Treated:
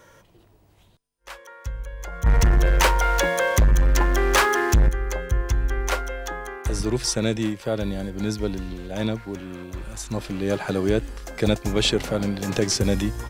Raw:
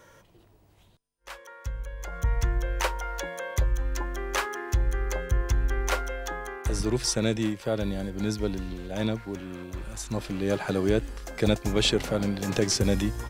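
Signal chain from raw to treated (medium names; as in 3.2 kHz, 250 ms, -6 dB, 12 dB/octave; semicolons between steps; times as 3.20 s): 2.26–4.89 s: waveshaping leveller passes 3; trim +2.5 dB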